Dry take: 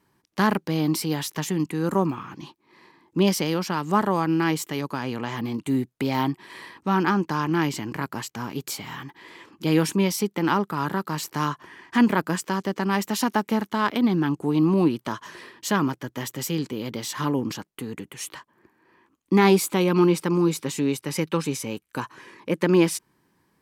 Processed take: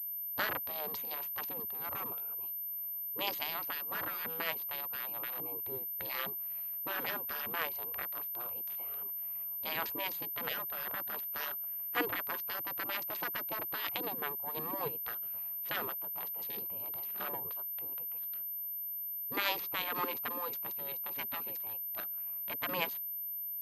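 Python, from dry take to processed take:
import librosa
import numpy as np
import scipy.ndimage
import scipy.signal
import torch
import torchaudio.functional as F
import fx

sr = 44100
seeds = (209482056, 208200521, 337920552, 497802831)

y = fx.wiener(x, sr, points=25)
y = fx.spec_gate(y, sr, threshold_db=-15, keep='weak')
y = fx.pwm(y, sr, carrier_hz=13000.0)
y = F.gain(torch.from_numpy(y), -3.5).numpy()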